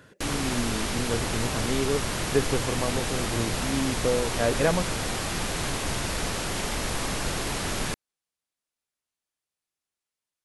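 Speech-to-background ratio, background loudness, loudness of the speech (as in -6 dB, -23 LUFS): -1.0 dB, -29.0 LUFS, -30.0 LUFS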